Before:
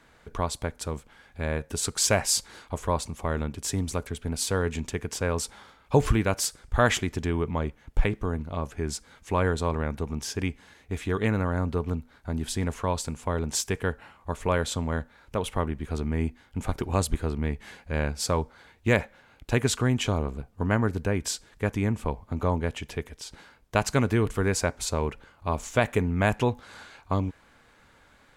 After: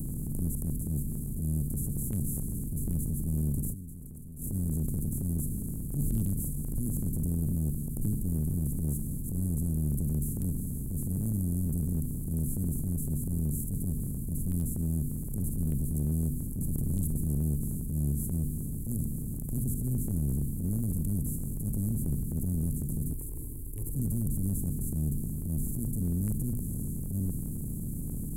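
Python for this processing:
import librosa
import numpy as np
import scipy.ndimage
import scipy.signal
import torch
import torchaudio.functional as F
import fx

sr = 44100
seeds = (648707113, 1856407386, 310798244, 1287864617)

y = fx.bin_compress(x, sr, power=0.2)
y = scipy.signal.sosfilt(scipy.signal.cheby2(4, 60, [630.0, 4800.0], 'bandstop', fs=sr, output='sos'), y)
y = fx.low_shelf(y, sr, hz=120.0, db=-9.5)
y = fx.hum_notches(y, sr, base_hz=60, count=2)
y = fx.level_steps(y, sr, step_db=20, at=(3.72, 4.37), fade=0.02)
y = fx.transient(y, sr, attack_db=-12, sustain_db=2)
y = 10.0 ** (-17.0 / 20.0) * (np.abs((y / 10.0 ** (-17.0 / 20.0) + 3.0) % 4.0 - 2.0) - 1.0)
y = fx.fixed_phaser(y, sr, hz=950.0, stages=8, at=(23.13, 23.96))
y = y * 10.0 ** (-2.5 / 20.0)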